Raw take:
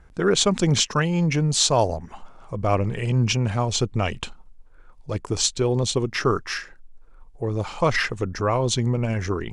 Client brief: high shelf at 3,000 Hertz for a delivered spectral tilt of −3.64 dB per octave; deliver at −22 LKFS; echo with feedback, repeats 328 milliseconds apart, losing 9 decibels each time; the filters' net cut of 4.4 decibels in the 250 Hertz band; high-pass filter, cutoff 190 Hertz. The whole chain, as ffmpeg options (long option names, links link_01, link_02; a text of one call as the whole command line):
ffmpeg -i in.wav -af "highpass=190,equalizer=frequency=250:width_type=o:gain=-3.5,highshelf=frequency=3000:gain=-3.5,aecho=1:1:328|656|984|1312:0.355|0.124|0.0435|0.0152,volume=3.5dB" out.wav